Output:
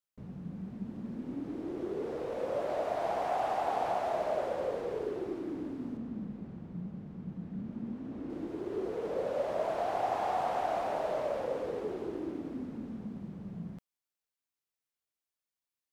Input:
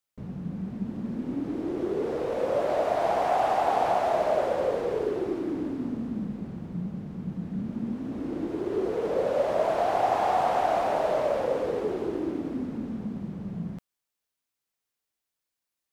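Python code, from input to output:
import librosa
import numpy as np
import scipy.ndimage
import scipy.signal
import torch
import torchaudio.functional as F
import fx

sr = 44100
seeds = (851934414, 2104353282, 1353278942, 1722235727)

y = fx.high_shelf(x, sr, hz=5600.0, db=-9.5, at=(5.97, 8.3))
y = y * 10.0 ** (-7.5 / 20.0)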